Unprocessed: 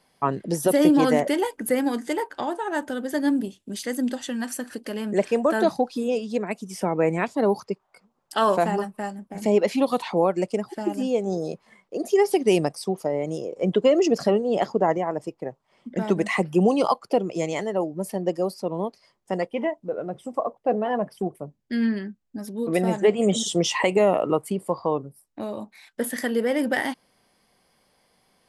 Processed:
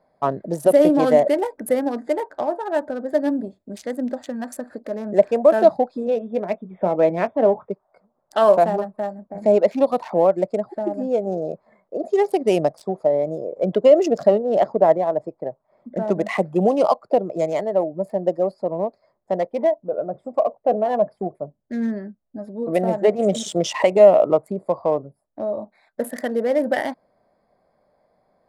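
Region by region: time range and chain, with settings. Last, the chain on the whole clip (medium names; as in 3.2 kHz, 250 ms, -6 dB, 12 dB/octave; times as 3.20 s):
6.05–7.70 s: brick-wall FIR low-pass 3.7 kHz + doubling 22 ms -11.5 dB
whole clip: local Wiener filter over 15 samples; peaking EQ 620 Hz +12.5 dB 0.45 oct; trim -1 dB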